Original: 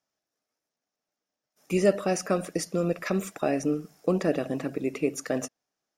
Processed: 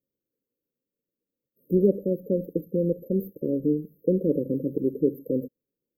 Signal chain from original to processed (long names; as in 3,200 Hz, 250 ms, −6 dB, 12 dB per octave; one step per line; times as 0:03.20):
linear-phase brick-wall band-stop 570–12,000 Hz
0:01.97–0:04.30: tuned comb filter 76 Hz, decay 0.15 s, harmonics all, mix 30%
level +4 dB